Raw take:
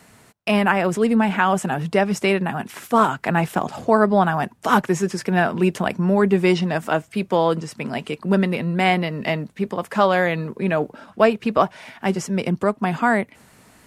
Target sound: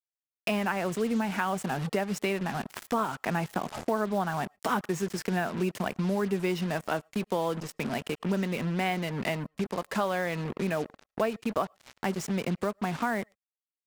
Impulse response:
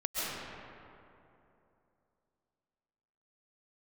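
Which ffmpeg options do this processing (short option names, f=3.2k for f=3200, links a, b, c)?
-filter_complex "[0:a]acrusher=bits=4:mix=0:aa=0.5,asplit=2[a][b];[1:a]atrim=start_sample=2205,afade=t=out:st=0.16:d=0.01,atrim=end_sample=7497[c];[b][c]afir=irnorm=-1:irlink=0,volume=-23dB[d];[a][d]amix=inputs=2:normalize=0,acompressor=threshold=-31dB:ratio=2.5"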